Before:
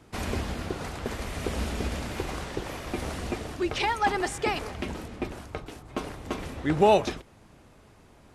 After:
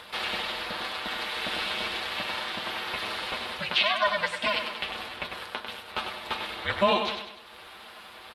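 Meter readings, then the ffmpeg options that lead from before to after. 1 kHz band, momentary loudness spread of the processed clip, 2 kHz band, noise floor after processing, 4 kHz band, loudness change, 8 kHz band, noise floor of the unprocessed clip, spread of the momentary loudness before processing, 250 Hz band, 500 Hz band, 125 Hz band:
-0.5 dB, 13 LU, +5.5 dB, -48 dBFS, +9.5 dB, +0.5 dB, -6.0 dB, -55 dBFS, 13 LU, -8.5 dB, -4.0 dB, -13.0 dB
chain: -filter_complex "[0:a]highpass=790,bandreject=f=2.2k:w=29,acrossover=split=8700[a][b];[b]acompressor=threshold=-60dB:ratio=4:attack=1:release=60[c];[a][c]amix=inputs=2:normalize=0,highshelf=f=4.6k:t=q:w=3:g=-10.5,aecho=1:1:7.3:0.7,asplit=2[d][e];[e]acompressor=mode=upward:threshold=-32dB:ratio=2.5,volume=-1dB[f];[d][f]amix=inputs=2:normalize=0,alimiter=limit=-11dB:level=0:latency=1:release=444,aeval=exprs='val(0)*sin(2*PI*200*n/s)':c=same,aexciter=amount=3.1:drive=1.1:freq=4.3k,aecho=1:1:98|196|294|392|490:0.447|0.201|0.0905|0.0407|0.0183"

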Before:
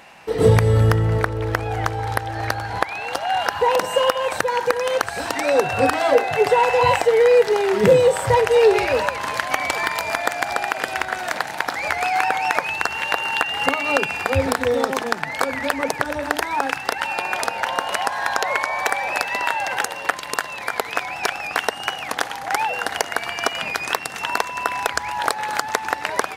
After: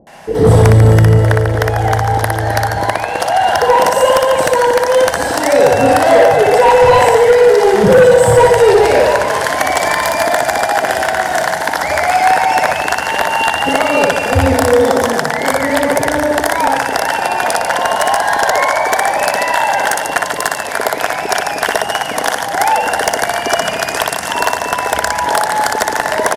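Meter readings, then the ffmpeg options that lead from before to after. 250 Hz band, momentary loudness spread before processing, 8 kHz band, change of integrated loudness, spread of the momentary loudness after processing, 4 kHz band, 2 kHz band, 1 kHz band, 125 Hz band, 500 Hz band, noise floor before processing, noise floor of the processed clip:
+9.5 dB, 9 LU, +10.5 dB, +8.5 dB, 8 LU, +6.5 dB, +7.0 dB, +9.5 dB, +9.5 dB, +9.0 dB, -33 dBFS, -21 dBFS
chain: -filter_complex "[0:a]equalizer=f=630:t=o:w=0.33:g=7,equalizer=f=1.25k:t=o:w=0.33:g=-6,equalizer=f=2.5k:t=o:w=0.33:g=-11,equalizer=f=4k:t=o:w=0.33:g=-5,equalizer=f=10k:t=o:w=0.33:g=3,acrossover=split=480[a][b];[b]adelay=70[c];[a][c]amix=inputs=2:normalize=0,aresample=32000,aresample=44100,asplit=2[d][e];[e]aecho=0:1:60|144|261.6|426.2|656.7:0.631|0.398|0.251|0.158|0.1[f];[d][f]amix=inputs=2:normalize=0,aeval=exprs='0.944*(cos(1*acos(clip(val(0)/0.944,-1,1)))-cos(1*PI/2))+0.266*(cos(5*acos(clip(val(0)/0.944,-1,1)))-cos(5*PI/2))':c=same,volume=1.5dB"

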